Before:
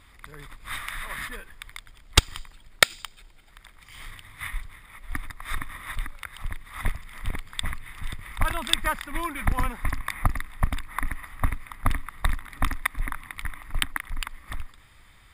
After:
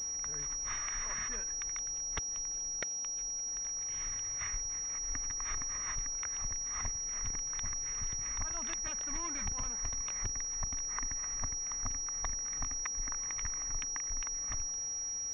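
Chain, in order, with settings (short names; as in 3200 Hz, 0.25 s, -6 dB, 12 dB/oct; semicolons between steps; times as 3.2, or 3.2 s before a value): 8.87–10.33 self-modulated delay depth 0.67 ms; compressor 6:1, threshold -32 dBFS, peak gain reduction 20.5 dB; band noise 110–980 Hz -58 dBFS; pulse-width modulation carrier 5700 Hz; gain -5 dB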